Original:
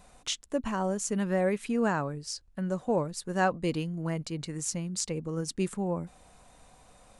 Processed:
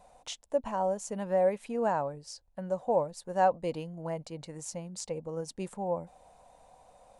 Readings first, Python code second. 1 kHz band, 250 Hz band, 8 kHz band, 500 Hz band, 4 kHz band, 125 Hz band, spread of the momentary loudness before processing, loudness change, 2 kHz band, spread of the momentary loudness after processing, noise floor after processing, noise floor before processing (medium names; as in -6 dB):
+2.5 dB, -8.0 dB, -8.0 dB, +1.5 dB, -8.0 dB, -8.0 dB, 7 LU, -1.5 dB, -8.0 dB, 15 LU, -65 dBFS, -58 dBFS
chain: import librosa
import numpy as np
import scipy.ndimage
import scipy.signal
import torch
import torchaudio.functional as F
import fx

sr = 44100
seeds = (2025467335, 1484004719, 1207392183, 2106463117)

y = fx.band_shelf(x, sr, hz=690.0, db=11.5, octaves=1.2)
y = y * 10.0 ** (-8.0 / 20.0)